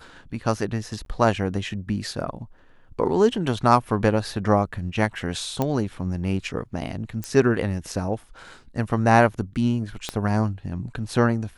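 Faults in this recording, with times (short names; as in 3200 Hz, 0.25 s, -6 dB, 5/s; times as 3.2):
1.05–1.06 gap 12 ms
5.62 pop -11 dBFS
7.24 pop -14 dBFS
10.09 pop -12 dBFS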